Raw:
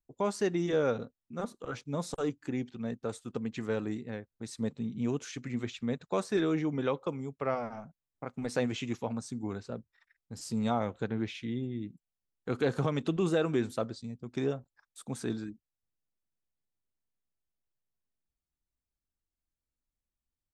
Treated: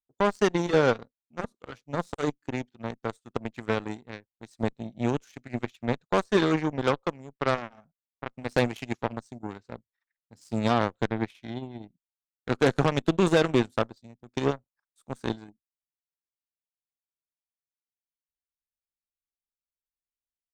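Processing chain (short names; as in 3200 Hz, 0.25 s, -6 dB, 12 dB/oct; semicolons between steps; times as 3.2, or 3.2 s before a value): added harmonics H 2 -14 dB, 5 -24 dB, 7 -15 dB, 8 -36 dB, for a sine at -16 dBFS; gain +6 dB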